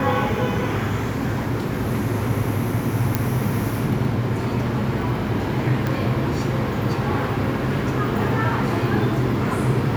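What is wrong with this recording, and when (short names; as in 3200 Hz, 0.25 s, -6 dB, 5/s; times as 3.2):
3.15 pop -5 dBFS
5.87 pop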